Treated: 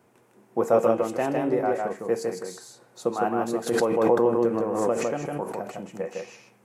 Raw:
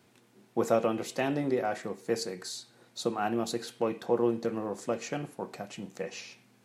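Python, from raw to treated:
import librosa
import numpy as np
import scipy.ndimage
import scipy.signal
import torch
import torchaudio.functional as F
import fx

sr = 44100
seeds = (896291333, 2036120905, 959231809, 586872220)

y = fx.graphic_eq(x, sr, hz=(500, 1000, 4000), db=(5, 5, -10))
y = y + 10.0 ** (-3.0 / 20.0) * np.pad(y, (int(156 * sr / 1000.0), 0))[:len(y)]
y = fx.pre_swell(y, sr, db_per_s=31.0, at=(3.66, 5.7), fade=0.02)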